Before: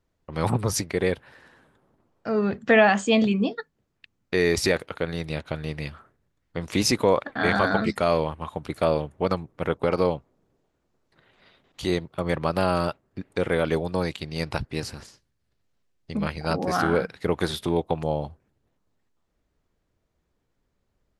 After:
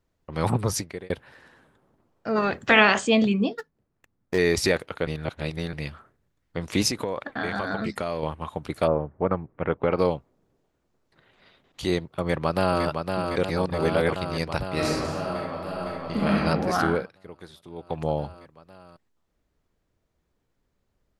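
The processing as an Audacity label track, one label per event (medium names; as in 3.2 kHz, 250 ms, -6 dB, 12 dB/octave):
0.680000	1.100000	fade out
2.350000	3.060000	spectral peaks clipped ceiling under each frame's peak by 18 dB
3.580000	4.380000	median filter over 15 samples
5.070000	5.730000	reverse
6.880000	8.230000	compression, threshold -24 dBFS
8.860000	9.980000	low-pass 1.4 kHz -> 3.2 kHz 24 dB/octave
12.210000	12.840000	echo throw 510 ms, feedback 80%, level -5 dB
13.440000	14.160000	reverse
14.730000	16.380000	reverb throw, RT60 1.3 s, DRR -4.5 dB
16.890000	18.030000	dip -19 dB, fades 0.36 s quadratic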